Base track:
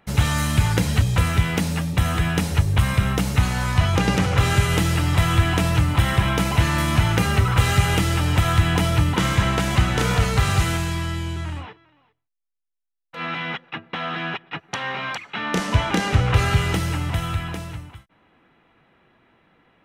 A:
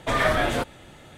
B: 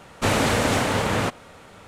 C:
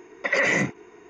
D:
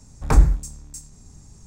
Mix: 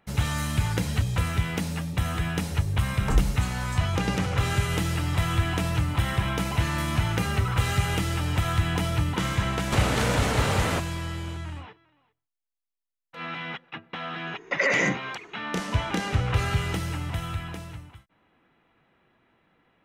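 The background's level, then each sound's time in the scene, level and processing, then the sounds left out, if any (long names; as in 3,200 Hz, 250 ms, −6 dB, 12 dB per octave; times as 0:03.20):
base track −6.5 dB
0:02.78: mix in D −8.5 dB
0:09.50: mix in B −0.5 dB + downward compressor, threshold −22 dBFS
0:14.27: mix in C −1.5 dB
not used: A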